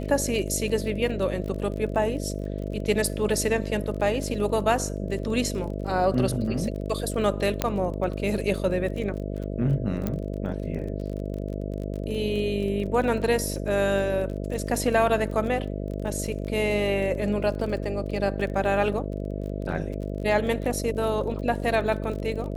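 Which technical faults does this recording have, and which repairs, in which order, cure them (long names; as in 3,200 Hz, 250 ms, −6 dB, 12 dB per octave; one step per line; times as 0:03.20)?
mains buzz 50 Hz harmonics 13 −31 dBFS
surface crackle 28 per second −33 dBFS
0:07.62: click −8 dBFS
0:10.07: click −14 dBFS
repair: click removal
hum removal 50 Hz, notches 13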